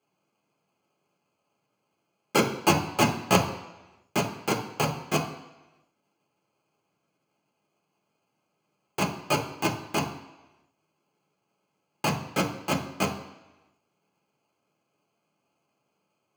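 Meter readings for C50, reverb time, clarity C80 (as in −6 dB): 9.0 dB, 1.0 s, 12.0 dB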